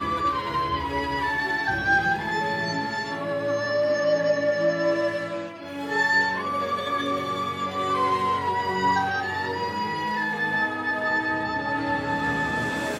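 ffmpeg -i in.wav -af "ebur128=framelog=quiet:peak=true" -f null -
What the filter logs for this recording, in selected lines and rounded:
Integrated loudness:
  I:         -24.7 LUFS
  Threshold: -34.7 LUFS
Loudness range:
  LRA:         1.4 LU
  Threshold: -44.7 LUFS
  LRA low:   -25.2 LUFS
  LRA high:  -23.8 LUFS
True peak:
  Peak:      -10.6 dBFS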